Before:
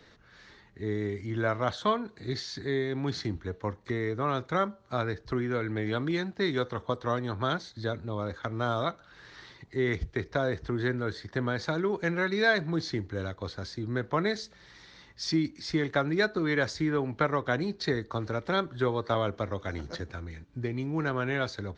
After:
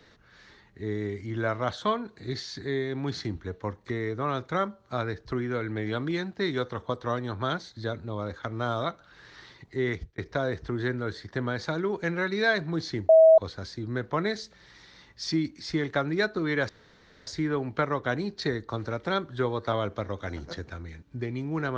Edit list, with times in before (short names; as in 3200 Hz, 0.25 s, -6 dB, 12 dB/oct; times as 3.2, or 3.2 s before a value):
9.88–10.18 fade out
13.09–13.38 bleep 644 Hz -11.5 dBFS
16.69 insert room tone 0.58 s